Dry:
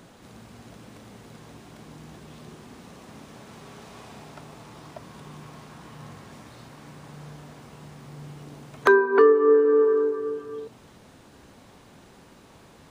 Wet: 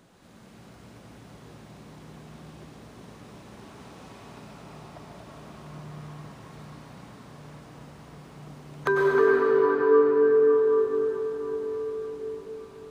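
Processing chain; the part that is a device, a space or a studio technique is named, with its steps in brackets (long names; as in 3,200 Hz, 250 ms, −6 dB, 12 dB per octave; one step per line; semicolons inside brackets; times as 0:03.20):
cathedral (convolution reverb RT60 6.1 s, pre-delay 92 ms, DRR −5.5 dB)
level −8 dB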